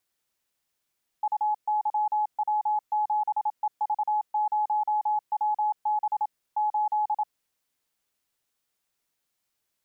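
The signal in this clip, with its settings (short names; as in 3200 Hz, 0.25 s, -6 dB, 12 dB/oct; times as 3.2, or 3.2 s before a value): Morse "UYW7EV0WB 8" 27 wpm 847 Hz -22 dBFS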